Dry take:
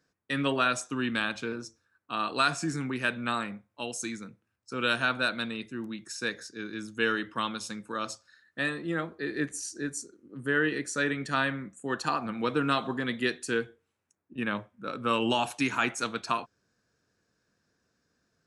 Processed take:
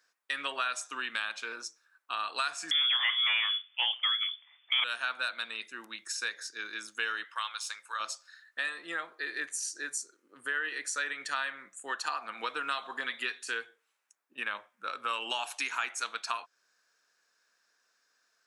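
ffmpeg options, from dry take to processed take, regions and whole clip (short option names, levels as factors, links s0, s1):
-filter_complex "[0:a]asettb=1/sr,asplit=3[s0][s1][s2];[s0]atrim=end=2.714[s3];[s1]atrim=start=2.71:end=4.84,asetpts=PTS-STARTPTS,afade=t=in:d=0.004:c=qsin,afade=t=out:st=2.126:d=0.004:c=qsin,aeval=exprs='0.251*sin(PI/2*3.98*val(0)/0.251)':c=same,lowpass=f=3100:t=q:w=0.5098,lowpass=f=3100:t=q:w=0.6013,lowpass=f=3100:t=q:w=0.9,lowpass=f=3100:t=q:w=2.563,afreqshift=-3600[s4];[s2]atrim=start=4.836[s5];[s3][s4]acrossfade=d=0.004:c1=hsin:c2=qsin[s6];[s6][s5]acrossfade=d=0.004:c1=qsin:c2=hsin,asettb=1/sr,asplit=3[s7][s8][s9];[s7]atrim=end=7.244[s10];[s8]atrim=start=7.24:end=8,asetpts=PTS-STARTPTS,afade=t=in:d=0.004:c=qsin,afade=t=out:st=0.756:d=0.004:c=qsin,highpass=890,deesser=0.8[s11];[s9]atrim=start=7.996[s12];[s10][s11]acrossfade=d=0.004:c1=hsin:c2=qsin[s13];[s13][s12]acrossfade=d=0.004:c1=qsin:c2=hsin,asettb=1/sr,asplit=3[s14][s15][s16];[s14]atrim=end=12.974[s17];[s15]atrim=start=12.97:end=13.47,asetpts=PTS-STARTPTS,afade=t=in:d=0.004:c=qsin,afade=t=out:st=0.496:d=0.004:c=qsin,acrossover=split=3600[s18][s19];[s19]acompressor=threshold=0.00631:ratio=4:attack=1:release=60[s20];[s18][s20]amix=inputs=2:normalize=0,aecho=1:1:7.3:0.59,atrim=end_sample=22050[s21];[s16]atrim=start=13.466[s22];[s17][s21]acrossfade=d=0.004:c1=hsin:c2=qsin[s23];[s23][s22]acrossfade=d=0.004:c1=qsin:c2=hsin,highpass=1000,acompressor=threshold=0.0112:ratio=2.5,volume=1.88"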